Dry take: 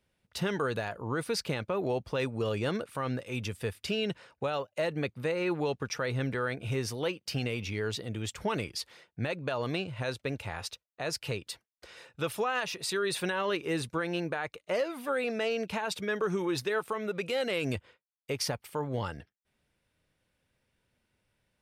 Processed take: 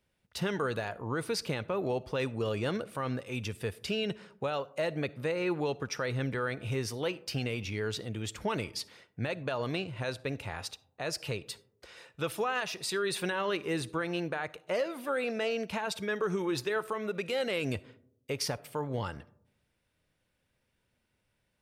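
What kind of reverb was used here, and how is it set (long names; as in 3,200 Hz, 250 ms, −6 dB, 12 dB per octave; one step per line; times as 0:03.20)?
comb and all-pass reverb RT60 0.75 s, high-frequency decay 0.3×, pre-delay 15 ms, DRR 19.5 dB
level −1 dB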